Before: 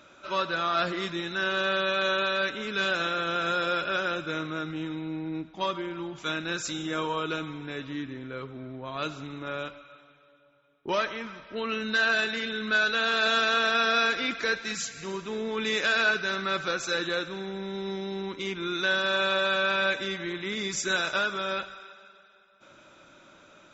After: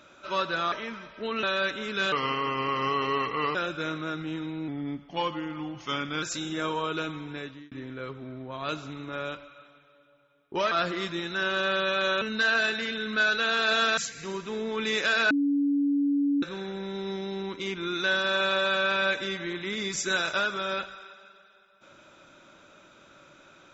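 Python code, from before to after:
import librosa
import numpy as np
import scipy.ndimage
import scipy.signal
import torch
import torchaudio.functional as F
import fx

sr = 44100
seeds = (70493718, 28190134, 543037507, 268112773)

y = fx.edit(x, sr, fx.swap(start_s=0.72, length_s=1.5, other_s=11.05, other_length_s=0.71),
    fx.speed_span(start_s=2.91, length_s=1.13, speed=0.79),
    fx.speed_span(start_s=5.17, length_s=1.39, speed=0.9),
    fx.fade_out_span(start_s=7.69, length_s=0.36),
    fx.cut(start_s=13.52, length_s=1.25),
    fx.bleep(start_s=16.1, length_s=1.12, hz=284.0, db=-21.5), tone=tone)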